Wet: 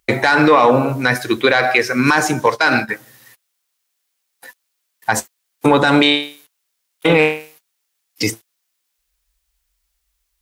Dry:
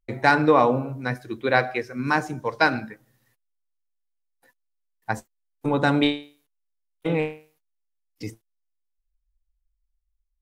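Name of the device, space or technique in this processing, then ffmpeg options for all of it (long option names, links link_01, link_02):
mastering chain: -filter_complex "[0:a]highpass=52,equalizer=frequency=370:width_type=o:width=1.8:gain=3,acompressor=threshold=-21dB:ratio=2,asoftclip=type=tanh:threshold=-10.5dB,tiltshelf=frequency=740:gain=-7.5,alimiter=level_in=17.5dB:limit=-1dB:release=50:level=0:latency=1,asettb=1/sr,asplit=3[link_01][link_02][link_03];[link_01]atrim=end=2.464[link_04];[link_02]atrim=start=2.46:end=2.89,asetpts=PTS-STARTPTS,afade=type=in:duration=0.004:curve=qsin,afade=type=out:start_time=0.426:duration=0.004:curve=qsin,agate=range=-14dB:threshold=-16dB:ratio=16:detection=peak[link_05];[link_03]atrim=start=2.886[link_06];[link_04][link_05]acrossfade=duration=0.004:curve1=hsin:curve2=qsin[link_07];[link_07][link_06]acrossfade=duration=0.004:curve1=qsin:curve2=hsin,volume=-1dB"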